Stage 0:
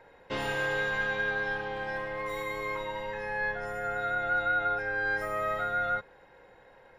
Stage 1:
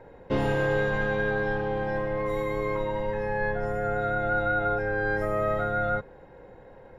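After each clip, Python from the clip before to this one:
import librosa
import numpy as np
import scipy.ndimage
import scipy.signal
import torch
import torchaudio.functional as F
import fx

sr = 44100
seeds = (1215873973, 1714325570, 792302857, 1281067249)

y = fx.tilt_shelf(x, sr, db=9.0, hz=810.0)
y = y * 10.0 ** (4.5 / 20.0)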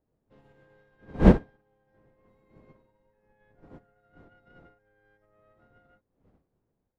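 y = fx.self_delay(x, sr, depth_ms=0.082)
y = fx.dmg_wind(y, sr, seeds[0], corner_hz=330.0, level_db=-22.0)
y = fx.upward_expand(y, sr, threshold_db=-29.0, expansion=2.5)
y = y * 10.0 ** (-5.5 / 20.0)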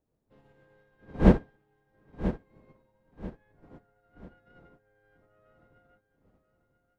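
y = fx.echo_feedback(x, sr, ms=989, feedback_pct=31, wet_db=-11.5)
y = y * 10.0 ** (-2.0 / 20.0)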